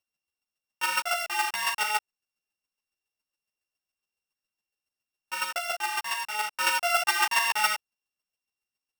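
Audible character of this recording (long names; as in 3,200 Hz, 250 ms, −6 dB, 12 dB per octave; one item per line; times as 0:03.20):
a buzz of ramps at a fixed pitch in blocks of 16 samples
chopped level 7.2 Hz, depth 60%, duty 10%
a shimmering, thickened sound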